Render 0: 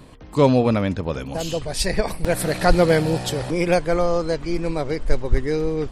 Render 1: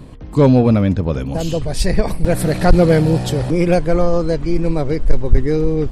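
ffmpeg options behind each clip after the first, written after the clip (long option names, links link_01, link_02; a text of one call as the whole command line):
ffmpeg -i in.wav -filter_complex "[0:a]lowshelf=frequency=420:gain=10.5,asplit=2[link_01][link_02];[link_02]acontrast=35,volume=-1.5dB[link_03];[link_01][link_03]amix=inputs=2:normalize=0,volume=-8dB" out.wav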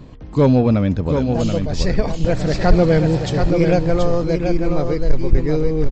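ffmpeg -i in.wav -filter_complex "[0:a]asplit=2[link_01][link_02];[link_02]aecho=0:1:730:0.531[link_03];[link_01][link_03]amix=inputs=2:normalize=0,aresample=16000,aresample=44100,volume=-2.5dB" out.wav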